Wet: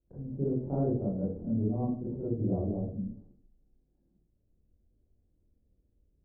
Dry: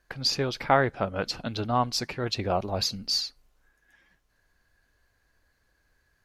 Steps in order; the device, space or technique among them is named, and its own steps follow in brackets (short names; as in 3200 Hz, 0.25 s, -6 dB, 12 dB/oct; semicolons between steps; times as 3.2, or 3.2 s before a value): next room (LPF 430 Hz 24 dB/oct; reverb RT60 0.50 s, pre-delay 22 ms, DRR -8.5 dB); gain -7.5 dB